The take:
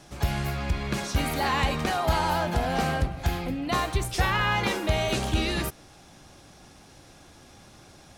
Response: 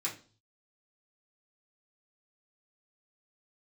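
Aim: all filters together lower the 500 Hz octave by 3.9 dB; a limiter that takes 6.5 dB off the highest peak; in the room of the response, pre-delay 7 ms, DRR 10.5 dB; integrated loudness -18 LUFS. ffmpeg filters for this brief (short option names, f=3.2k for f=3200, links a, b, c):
-filter_complex "[0:a]equalizer=f=500:t=o:g=-5.5,alimiter=limit=-20dB:level=0:latency=1,asplit=2[a][b];[1:a]atrim=start_sample=2205,adelay=7[c];[b][c]afir=irnorm=-1:irlink=0,volume=-13.5dB[d];[a][d]amix=inputs=2:normalize=0,volume=11.5dB"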